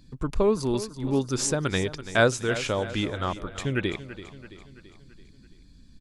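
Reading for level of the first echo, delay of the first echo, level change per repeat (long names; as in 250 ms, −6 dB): −14.0 dB, 334 ms, −5.5 dB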